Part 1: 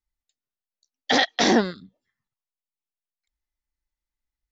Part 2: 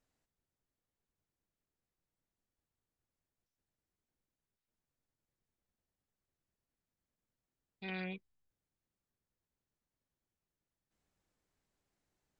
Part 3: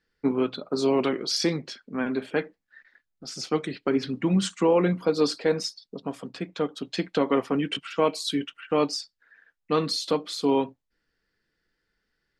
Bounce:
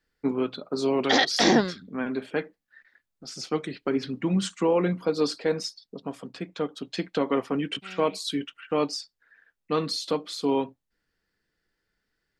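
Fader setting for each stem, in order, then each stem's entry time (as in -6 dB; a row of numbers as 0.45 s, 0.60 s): -1.5 dB, -4.0 dB, -2.0 dB; 0.00 s, 0.00 s, 0.00 s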